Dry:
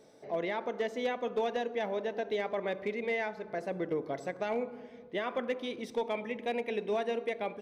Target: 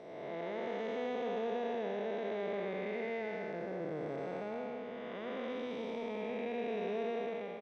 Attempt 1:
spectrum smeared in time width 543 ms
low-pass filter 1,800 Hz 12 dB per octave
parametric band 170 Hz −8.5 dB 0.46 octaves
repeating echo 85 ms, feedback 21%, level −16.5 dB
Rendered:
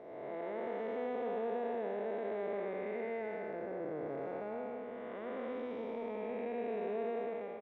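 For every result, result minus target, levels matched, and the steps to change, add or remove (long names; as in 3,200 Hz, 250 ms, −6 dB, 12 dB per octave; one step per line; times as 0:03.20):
4,000 Hz band −10.0 dB; 125 Hz band −4.0 dB
change: low-pass filter 5,300 Hz 12 dB per octave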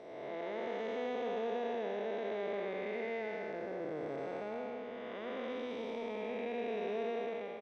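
125 Hz band −4.5 dB
remove: parametric band 170 Hz −8.5 dB 0.46 octaves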